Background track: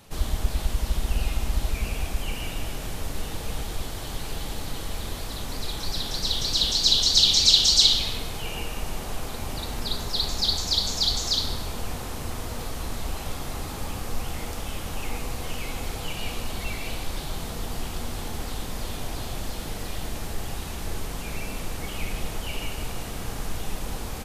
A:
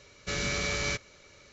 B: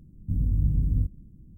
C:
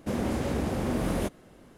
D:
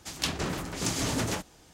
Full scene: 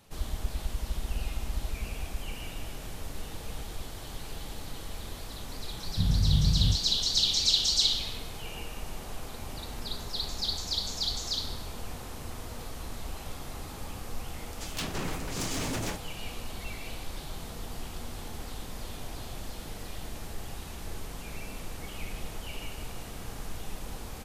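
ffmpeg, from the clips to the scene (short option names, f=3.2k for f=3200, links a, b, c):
-filter_complex "[0:a]volume=-7.5dB[a];[2:a]lowpass=f=190:t=q:w=1.6[b];[4:a]volume=26.5dB,asoftclip=hard,volume=-26.5dB[c];[b]atrim=end=1.57,asetpts=PTS-STARTPTS,volume=-2dB,afade=t=in:d=0.004:c=hsin,afade=t=out:st=1.566:d=0.004:c=hsin,adelay=250929S[d];[c]atrim=end=1.73,asetpts=PTS-STARTPTS,volume=-2.5dB,afade=t=in:d=0.004:c=hsin,afade=t=out:st=1.726:d=0.004:c=hsin,adelay=14550[e];[a][d][e]amix=inputs=3:normalize=0"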